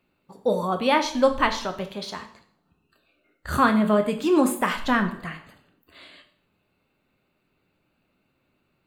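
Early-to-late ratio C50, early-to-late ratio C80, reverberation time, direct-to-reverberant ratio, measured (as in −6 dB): 11.5 dB, 14.0 dB, 0.60 s, 5.5 dB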